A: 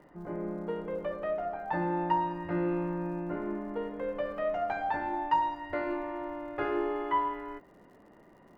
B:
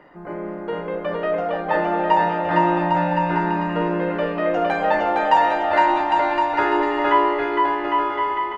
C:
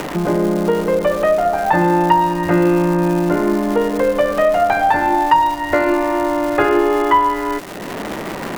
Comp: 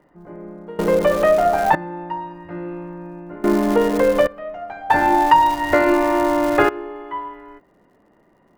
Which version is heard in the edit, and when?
A
0.79–1.75 from C
3.44–4.27 from C
4.9–6.69 from C
not used: B

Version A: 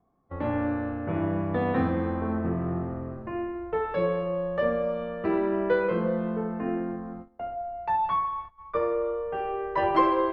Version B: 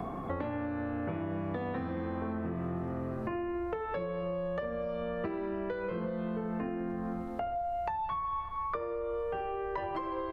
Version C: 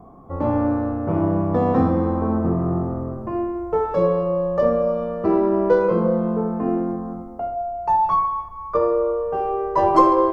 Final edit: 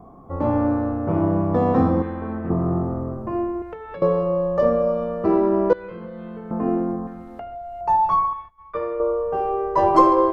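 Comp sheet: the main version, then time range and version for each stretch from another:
C
2.02–2.5 from A
3.62–4.02 from B
5.73–6.51 from B
7.07–7.81 from B
8.33–9 from A

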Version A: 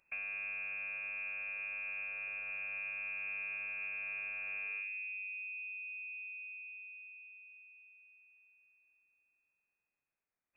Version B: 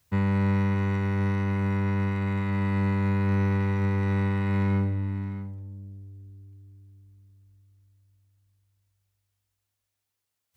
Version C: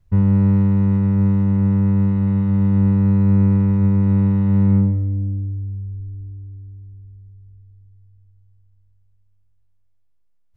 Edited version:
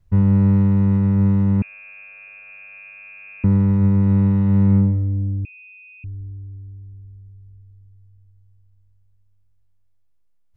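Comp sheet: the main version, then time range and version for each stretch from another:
C
1.62–3.44 from A
5.45–6.04 from A
not used: B

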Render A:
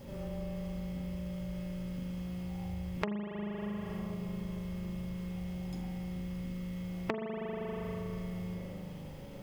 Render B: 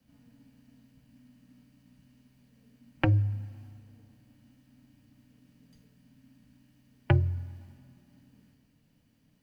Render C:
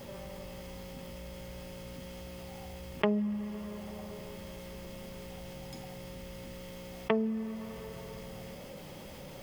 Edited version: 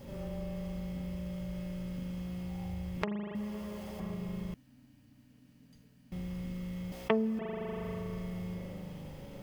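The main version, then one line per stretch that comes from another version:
A
3.35–4 from C
4.54–6.12 from B
6.92–7.39 from C

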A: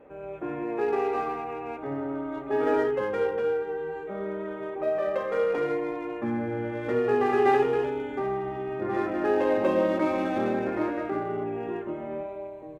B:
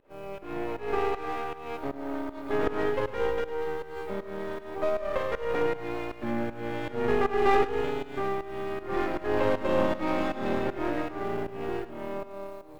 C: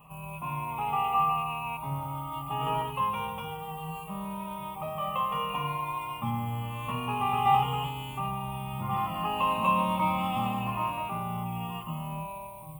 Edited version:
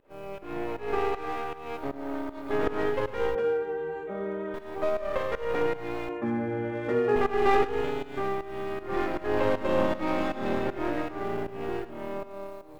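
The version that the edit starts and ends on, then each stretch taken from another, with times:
B
3.35–4.54 from A
6.09–7.16 from A
not used: C

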